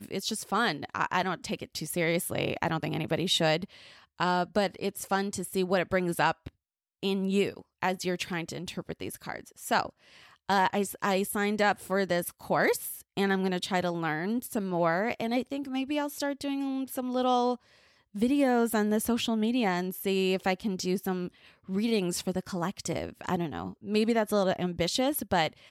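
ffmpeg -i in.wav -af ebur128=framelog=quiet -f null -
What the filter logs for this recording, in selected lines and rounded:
Integrated loudness:
  I:         -29.4 LUFS
  Threshold: -39.7 LUFS
Loudness range:
  LRA:         3.7 LU
  Threshold: -49.8 LUFS
  LRA low:   -31.9 LUFS
  LRA high:  -28.1 LUFS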